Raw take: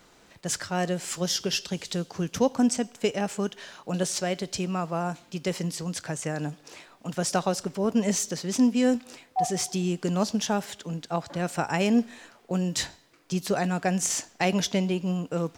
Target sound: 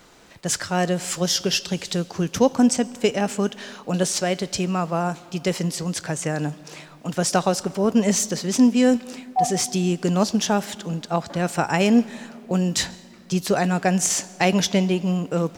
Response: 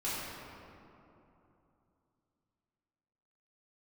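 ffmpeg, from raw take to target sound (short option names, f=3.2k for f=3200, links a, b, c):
-filter_complex "[0:a]asplit=2[a][b];[1:a]atrim=start_sample=2205,adelay=136[c];[b][c]afir=irnorm=-1:irlink=0,volume=-27.5dB[d];[a][d]amix=inputs=2:normalize=0,volume=5.5dB"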